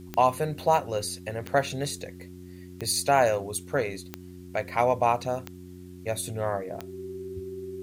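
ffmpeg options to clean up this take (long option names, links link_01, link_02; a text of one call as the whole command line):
ffmpeg -i in.wav -af "adeclick=threshold=4,bandreject=frequency=90.3:width_type=h:width=4,bandreject=frequency=180.6:width_type=h:width=4,bandreject=frequency=270.9:width_type=h:width=4,bandreject=frequency=361.2:width_type=h:width=4,bandreject=frequency=380:width=30,agate=range=-21dB:threshold=-36dB" out.wav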